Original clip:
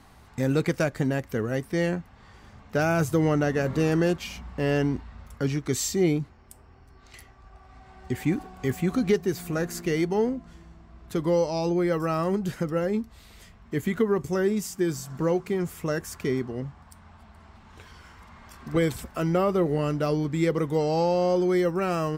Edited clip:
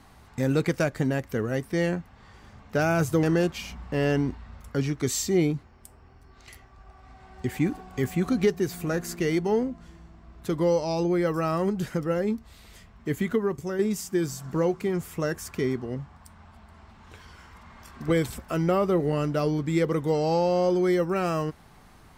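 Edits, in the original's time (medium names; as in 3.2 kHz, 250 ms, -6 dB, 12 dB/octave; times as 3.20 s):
3.23–3.89 s: delete
13.84–14.45 s: fade out, to -6.5 dB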